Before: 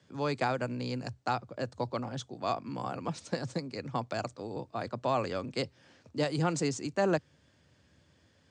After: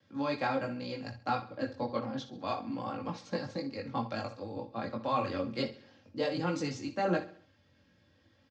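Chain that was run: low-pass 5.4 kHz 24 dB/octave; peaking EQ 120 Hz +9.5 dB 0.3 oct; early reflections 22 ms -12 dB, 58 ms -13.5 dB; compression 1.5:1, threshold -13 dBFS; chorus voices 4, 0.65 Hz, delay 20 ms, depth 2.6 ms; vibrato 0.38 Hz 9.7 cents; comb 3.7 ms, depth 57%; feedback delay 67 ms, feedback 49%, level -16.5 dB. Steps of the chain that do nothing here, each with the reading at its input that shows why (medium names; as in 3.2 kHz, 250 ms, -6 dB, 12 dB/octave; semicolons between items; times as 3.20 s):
compression, threshold -13 dBFS: peak at its input -15.5 dBFS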